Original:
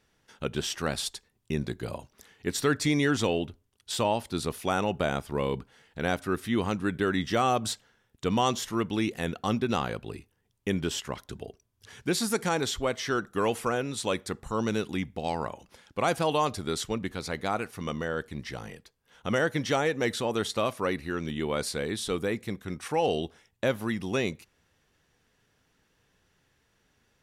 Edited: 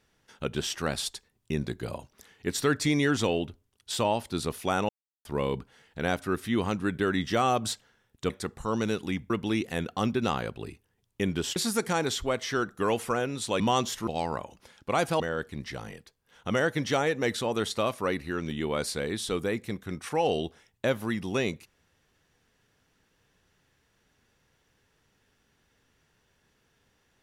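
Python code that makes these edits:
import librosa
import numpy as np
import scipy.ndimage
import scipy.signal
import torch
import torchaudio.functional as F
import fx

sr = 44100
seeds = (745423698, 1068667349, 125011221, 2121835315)

y = fx.edit(x, sr, fx.silence(start_s=4.89, length_s=0.36),
    fx.swap(start_s=8.3, length_s=0.47, other_s=14.16, other_length_s=1.0),
    fx.cut(start_s=11.03, length_s=1.09),
    fx.cut(start_s=16.29, length_s=1.7), tone=tone)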